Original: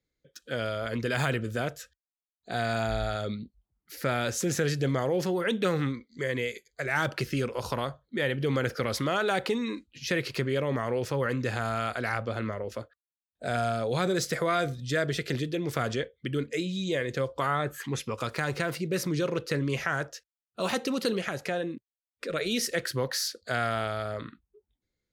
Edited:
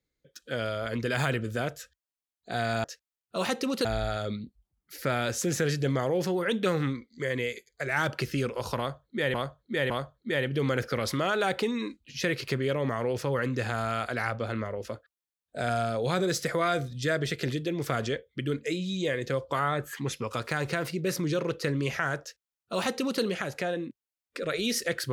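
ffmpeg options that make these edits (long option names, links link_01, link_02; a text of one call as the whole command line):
ffmpeg -i in.wav -filter_complex "[0:a]asplit=5[link_01][link_02][link_03][link_04][link_05];[link_01]atrim=end=2.842[link_06];[link_02]atrim=start=20.078:end=21.092[link_07];[link_03]atrim=start=2.838:end=8.332[link_08];[link_04]atrim=start=7.768:end=8.332[link_09];[link_05]atrim=start=7.768[link_10];[link_06][link_07]acrossfade=duration=0.004:curve1=hsin:curve2=hsin[link_11];[link_11][link_08]acrossfade=duration=0.004:curve1=hsin:curve2=hsin[link_12];[link_12][link_09]acrossfade=duration=0.004:curve1=hsin:curve2=hsin[link_13];[link_13][link_10]acrossfade=duration=0.004:curve1=hsin:curve2=hsin" out.wav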